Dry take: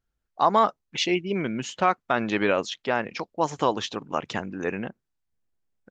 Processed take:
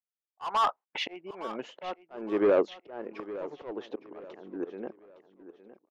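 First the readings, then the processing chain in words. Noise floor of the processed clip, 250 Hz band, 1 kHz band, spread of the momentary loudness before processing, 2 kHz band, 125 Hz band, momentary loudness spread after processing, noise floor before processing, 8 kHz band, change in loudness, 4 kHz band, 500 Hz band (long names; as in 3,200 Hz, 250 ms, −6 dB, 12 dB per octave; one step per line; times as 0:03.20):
below −85 dBFS, −7.0 dB, −8.5 dB, 9 LU, −12.0 dB, below −15 dB, 17 LU, −81 dBFS, below −15 dB, −6.5 dB, −9.0 dB, −3.5 dB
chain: noise gate −41 dBFS, range −35 dB
band-pass filter sweep 1,000 Hz → 370 Hz, 0:00.59–0:02.28
mid-hump overdrive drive 22 dB, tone 2,800 Hz, clips at −10.5 dBFS
volume swells 486 ms
on a send: repeating echo 862 ms, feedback 35%, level −15 dB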